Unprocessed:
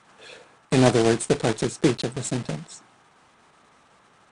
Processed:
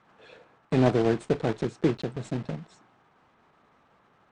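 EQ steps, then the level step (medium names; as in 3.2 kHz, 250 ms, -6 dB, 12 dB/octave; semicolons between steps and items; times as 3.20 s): tape spacing loss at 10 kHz 23 dB; -3.0 dB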